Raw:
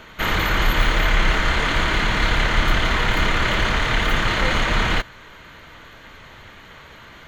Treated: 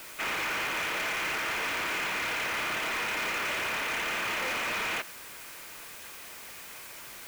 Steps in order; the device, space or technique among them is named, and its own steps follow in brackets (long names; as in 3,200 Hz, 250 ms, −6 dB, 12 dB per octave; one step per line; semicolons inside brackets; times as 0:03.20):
drive-through speaker (band-pass filter 360–3,200 Hz; parametric band 2,500 Hz +10.5 dB 0.25 octaves; hard clipping −22 dBFS, distortion −9 dB; white noise bed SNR 13 dB)
level −7 dB